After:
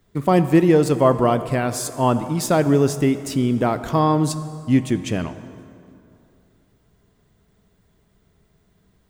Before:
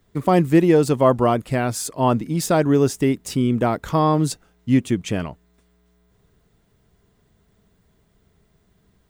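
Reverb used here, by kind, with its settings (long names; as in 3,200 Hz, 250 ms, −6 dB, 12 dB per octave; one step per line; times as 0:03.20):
dense smooth reverb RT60 2.7 s, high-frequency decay 0.6×, DRR 11.5 dB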